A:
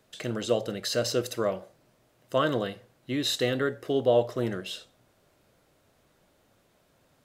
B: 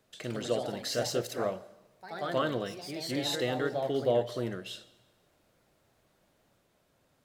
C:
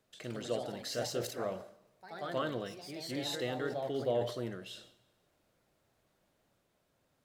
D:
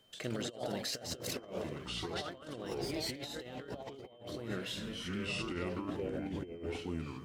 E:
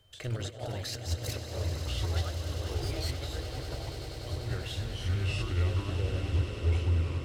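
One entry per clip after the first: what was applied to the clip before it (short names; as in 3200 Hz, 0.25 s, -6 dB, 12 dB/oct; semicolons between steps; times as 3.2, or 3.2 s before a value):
on a send at -20.5 dB: reverb RT60 1.1 s, pre-delay 0.114 s; on the sum: echoes that change speed 0.124 s, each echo +2 st, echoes 3, each echo -6 dB; gain -5 dB
sustainer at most 100 dB/s; gain -5.5 dB
echoes that change speed 0.68 s, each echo -6 st, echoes 3, each echo -6 dB; negative-ratio compressor -41 dBFS, ratio -0.5; whine 3100 Hz -68 dBFS; gain +1.5 dB
resonant low shelf 130 Hz +13 dB, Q 3; swelling echo 98 ms, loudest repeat 8, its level -13.5 dB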